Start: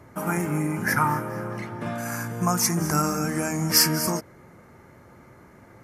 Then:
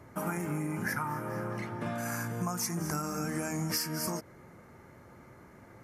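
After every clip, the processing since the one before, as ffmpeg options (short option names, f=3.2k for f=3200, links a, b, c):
-af "acompressor=threshold=-26dB:ratio=12,volume=-3.5dB"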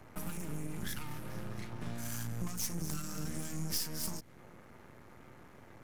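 -filter_complex "[0:a]aeval=exprs='max(val(0),0)':c=same,acrossover=split=250|3000[a][b][c];[b]acompressor=threshold=-52dB:ratio=4[d];[a][d][c]amix=inputs=3:normalize=0,volume=2dB"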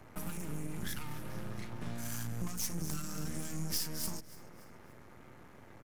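-af "aecho=1:1:288|576|864:0.106|0.0477|0.0214"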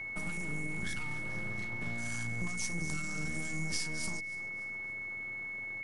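-af "aeval=exprs='val(0)+0.0126*sin(2*PI*2200*n/s)':c=same,aresample=22050,aresample=44100"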